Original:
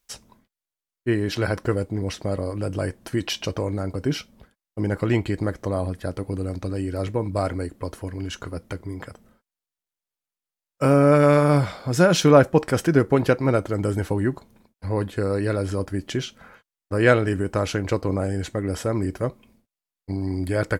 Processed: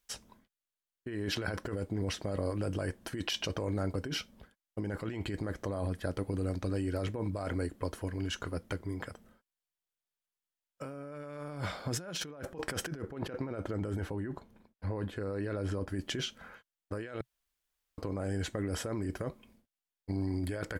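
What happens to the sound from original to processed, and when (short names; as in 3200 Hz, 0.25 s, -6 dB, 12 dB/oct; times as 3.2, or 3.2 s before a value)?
13.02–15.89 high shelf 3600 Hz -9 dB
17.21–17.98 room tone
whole clip: thirty-one-band EQ 125 Hz -4 dB, 1600 Hz +3 dB, 3150 Hz +3 dB; negative-ratio compressor -27 dBFS, ratio -1; gain -9 dB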